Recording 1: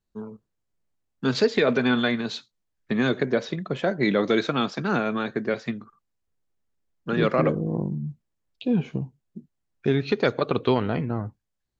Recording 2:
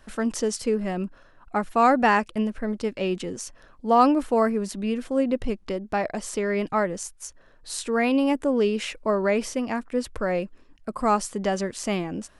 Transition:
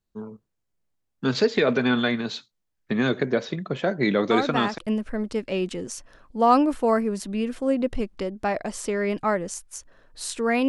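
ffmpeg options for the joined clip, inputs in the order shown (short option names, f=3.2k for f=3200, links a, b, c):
-filter_complex "[1:a]asplit=2[a][b];[0:a]apad=whole_dur=10.68,atrim=end=10.68,atrim=end=4.782[c];[b]atrim=start=2.268:end=8.17[d];[a]atrim=start=1.8:end=2.27,asetpts=PTS-STARTPTS,volume=-8dB,afade=t=in:d=0.004:c=hsin,afade=t=out:st=0.466:d=0.004:c=hsin,adelay=4310[e];[c][d]acrossfade=d=0.004:c1=hsin:c2=hsin[f];[f][e]amix=inputs=2:normalize=0"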